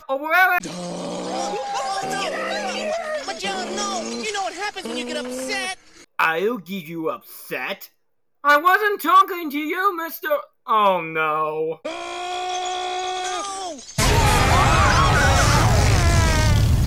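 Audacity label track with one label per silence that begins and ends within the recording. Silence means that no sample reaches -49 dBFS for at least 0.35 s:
7.890000	8.440000	silence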